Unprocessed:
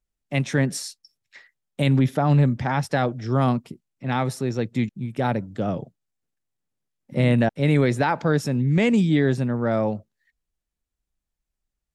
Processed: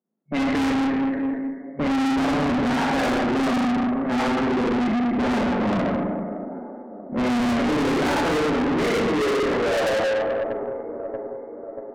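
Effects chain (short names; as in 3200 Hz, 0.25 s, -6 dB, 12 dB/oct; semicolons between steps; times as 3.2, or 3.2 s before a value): rattling part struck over -31 dBFS, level -29 dBFS; low-pass opened by the level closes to 850 Hz, open at -15.5 dBFS; FFT band-pass 140–2200 Hz; high-pass sweep 240 Hz -> 720 Hz, 7.69–10.88; band-limited delay 0.635 s, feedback 57%, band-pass 560 Hz, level -20 dB; Schroeder reverb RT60 1.5 s, combs from 33 ms, DRR -6 dB; tube stage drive 27 dB, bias 0.25; mismatched tape noise reduction decoder only; gain +6.5 dB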